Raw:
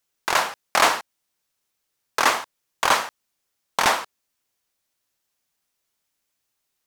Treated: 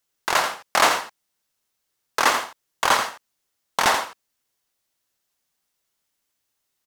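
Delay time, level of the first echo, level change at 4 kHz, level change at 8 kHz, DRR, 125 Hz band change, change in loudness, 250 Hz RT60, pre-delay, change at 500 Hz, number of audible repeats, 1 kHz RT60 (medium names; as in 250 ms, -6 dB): 85 ms, -8.5 dB, +0.5 dB, +0.5 dB, no reverb, +0.5 dB, +0.5 dB, no reverb, no reverb, +0.5 dB, 1, no reverb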